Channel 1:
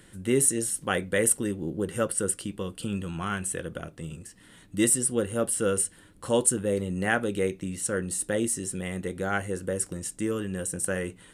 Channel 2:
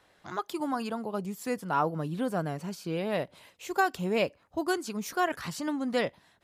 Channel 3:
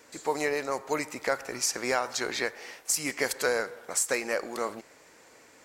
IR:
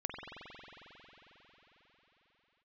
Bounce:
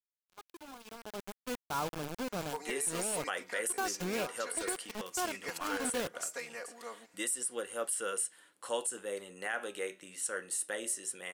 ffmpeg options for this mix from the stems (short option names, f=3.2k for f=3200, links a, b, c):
-filter_complex "[0:a]highpass=680,flanger=delay=3.4:depth=9.5:regen=-84:speed=0.2:shape=sinusoidal,adelay=2400,volume=0.5dB[a];[1:a]acrusher=bits=4:mix=0:aa=0.000001,agate=range=-11dB:threshold=-38dB:ratio=16:detection=peak,bandreject=f=1.9k:w=9,volume=-8dB,afade=t=in:st=0.82:d=0.54:silence=0.251189[b];[2:a]lowshelf=f=370:g=-9.5,aecho=1:1:4.2:0.99,adelay=2250,volume=-14.5dB[c];[a][b][c]amix=inputs=3:normalize=0,alimiter=limit=-23.5dB:level=0:latency=1:release=64"